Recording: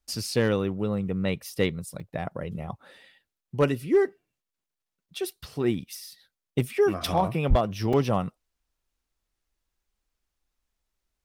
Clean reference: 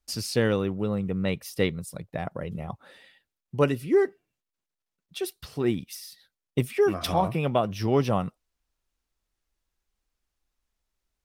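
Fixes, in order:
clipped peaks rebuilt −13.5 dBFS
0:07.49–0:07.61: high-pass filter 140 Hz 24 dB per octave
repair the gap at 0:02.00/0:07.00/0:07.93, 4.2 ms

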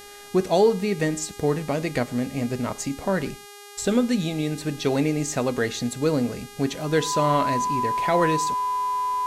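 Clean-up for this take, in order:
hum removal 408 Hz, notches 32
notch filter 1,000 Hz, Q 30
echo removal 107 ms −22.5 dB

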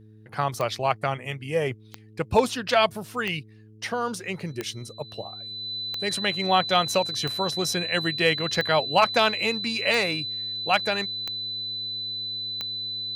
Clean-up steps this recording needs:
clipped peaks rebuilt −8 dBFS
click removal
hum removal 107.9 Hz, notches 4
notch filter 4,000 Hz, Q 30

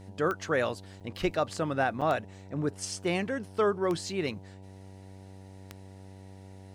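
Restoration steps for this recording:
click removal
hum removal 95.8 Hz, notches 10
repair the gap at 0:01.00/0:02.01, 6.6 ms

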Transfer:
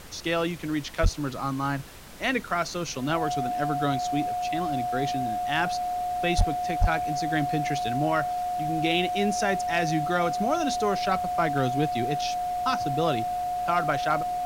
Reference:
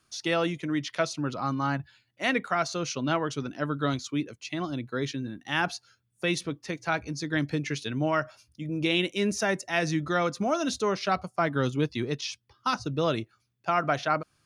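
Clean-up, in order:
clipped peaks rebuilt −14 dBFS
notch filter 720 Hz, Q 30
0:01.02–0:01.14: high-pass filter 140 Hz 24 dB per octave
0:06.37–0:06.49: high-pass filter 140 Hz 24 dB per octave
0:06.80–0:06.92: high-pass filter 140 Hz 24 dB per octave
noise reduction from a noise print 30 dB

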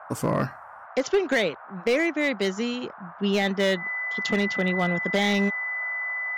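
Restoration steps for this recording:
clipped peaks rebuilt −15.5 dBFS
notch filter 2,000 Hz, Q 30
noise reduction from a noise print 28 dB

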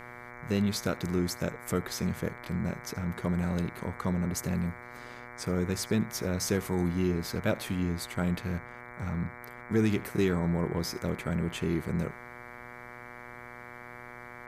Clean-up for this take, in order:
hum removal 121.5 Hz, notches 19
echo removal 77 ms −21.5 dB

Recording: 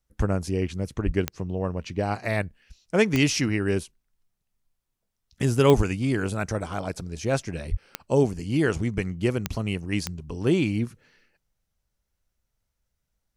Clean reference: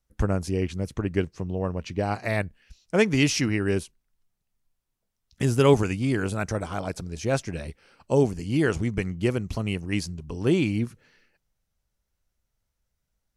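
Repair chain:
click removal
high-pass at the plosives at 0:01.05/0:05.76/0:07.70

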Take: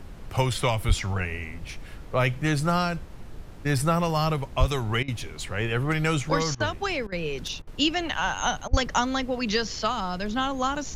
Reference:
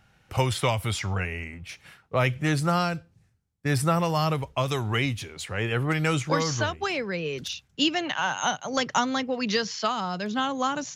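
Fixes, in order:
high-pass at the plosives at 0:00.87/0:04.59/0:08.70
repair the gap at 0:05.03/0:06.55/0:07.07/0:07.62/0:08.68, 50 ms
noise reduction from a noise print 19 dB

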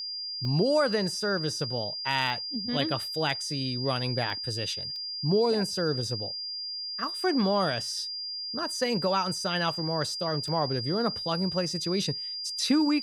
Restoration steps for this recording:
clipped peaks rebuilt −14 dBFS
notch filter 4,800 Hz, Q 30
repair the gap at 0:00.45/0:02.30/0:04.30/0:04.96/0:10.48, 1.1 ms

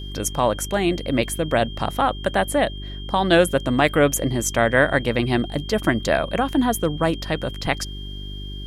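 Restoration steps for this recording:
hum removal 49.3 Hz, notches 8
notch filter 3,200 Hz, Q 30

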